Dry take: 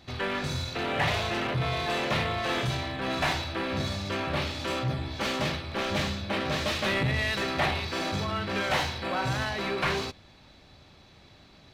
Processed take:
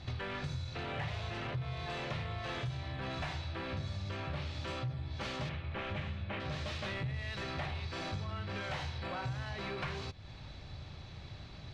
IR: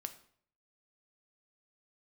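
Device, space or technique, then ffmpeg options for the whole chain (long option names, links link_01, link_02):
jukebox: -filter_complex "[0:a]asettb=1/sr,asplit=3[link_01][link_02][link_03];[link_01]atrim=end=5.494[link_04];[link_02]atrim=start=5.49:end=6.4,asetpts=PTS-STARTPTS,afade=type=in:duration=0.004:curve=qsin,afade=type=out:start_time=0.906:duration=0.004:curve=qsin,highshelf=frequency=3700:width_type=q:width=1.5:gain=-10[link_05];[link_03]atrim=start=6.396[link_06];[link_04][link_05]acrossfade=duration=0.004:curve1=hsin:curve2=qsin[link_07];[link_07][link_06]acrossfade=duration=0.004:curve1=qsin:curve2=hsin,lowpass=6700,lowshelf=frequency=170:width_type=q:width=1.5:gain=7.5,acompressor=threshold=-40dB:ratio=5,volume=2dB"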